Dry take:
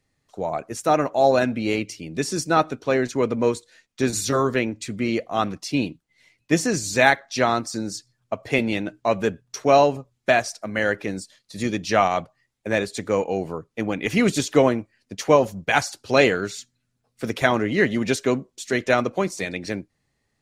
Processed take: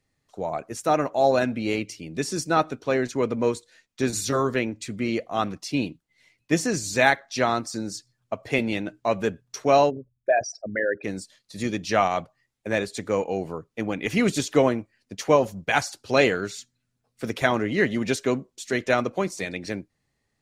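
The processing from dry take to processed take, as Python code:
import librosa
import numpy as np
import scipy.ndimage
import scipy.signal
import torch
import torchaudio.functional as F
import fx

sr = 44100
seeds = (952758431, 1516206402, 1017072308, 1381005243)

y = fx.envelope_sharpen(x, sr, power=3.0, at=(9.89, 11.03), fade=0.02)
y = F.gain(torch.from_numpy(y), -2.5).numpy()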